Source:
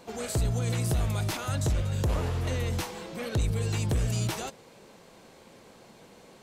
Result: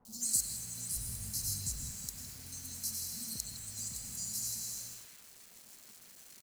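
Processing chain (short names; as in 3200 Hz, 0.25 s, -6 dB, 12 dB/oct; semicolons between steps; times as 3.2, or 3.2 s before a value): reverb removal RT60 1.2 s; brick-wall FIR band-stop 260–3900 Hz; reverb RT60 1.6 s, pre-delay 83 ms, DRR 0 dB; compressor 12:1, threshold -36 dBFS, peak gain reduction 13.5 dB; tone controls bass -15 dB, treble +13 dB; requantised 8-bit, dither none; 0.96–1.91 low shelf 190 Hz +11.5 dB; three bands offset in time lows, highs, mids 50/210 ms, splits 990/3900 Hz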